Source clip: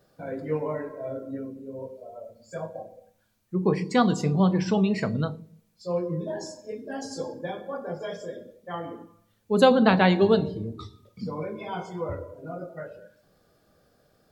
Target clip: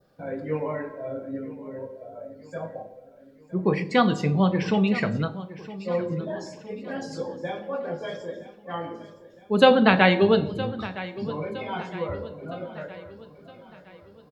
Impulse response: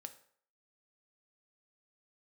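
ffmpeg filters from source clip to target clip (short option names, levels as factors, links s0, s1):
-filter_complex "[0:a]adynamicequalizer=threshold=0.00501:dfrequency=2400:dqfactor=1.1:tfrequency=2400:tqfactor=1.1:attack=5:release=100:ratio=0.375:range=4:mode=boostabove:tftype=bell,aecho=1:1:964|1928|2892|3856:0.158|0.0792|0.0396|0.0198,asplit=2[s0][s1];[1:a]atrim=start_sample=2205,lowpass=5100[s2];[s1][s2]afir=irnorm=-1:irlink=0,volume=2.11[s3];[s0][s3]amix=inputs=2:normalize=0,volume=0.501"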